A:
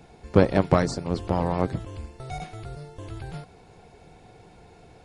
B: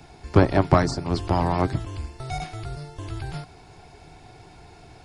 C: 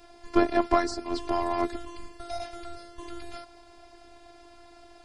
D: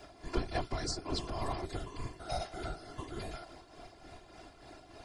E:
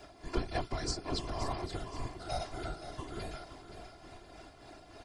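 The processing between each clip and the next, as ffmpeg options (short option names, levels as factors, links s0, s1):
-filter_complex "[0:a]equalizer=f=200:t=o:w=0.33:g=-10,equalizer=f=500:t=o:w=0.33:g=-12,equalizer=f=5000:t=o:w=0.33:g=5,acrossover=split=270|1700[s0][s1][s2];[s2]alimiter=level_in=1.58:limit=0.0631:level=0:latency=1:release=200,volume=0.631[s3];[s0][s1][s3]amix=inputs=3:normalize=0,volume=1.78"
-af "equalizer=f=110:t=o:w=1.3:g=-8,afftfilt=real='hypot(re,im)*cos(PI*b)':imag='0':win_size=512:overlap=0.75"
-filter_complex "[0:a]acrossover=split=130|3000[s0][s1][s2];[s1]acompressor=threshold=0.02:ratio=6[s3];[s0][s3][s2]amix=inputs=3:normalize=0,tremolo=f=3.4:d=0.57,afftfilt=real='hypot(re,im)*cos(2*PI*random(0))':imag='hypot(re,im)*sin(2*PI*random(1))':win_size=512:overlap=0.75,volume=2.37"
-af "aecho=1:1:524|1048|1572|2096:0.282|0.116|0.0474|0.0194"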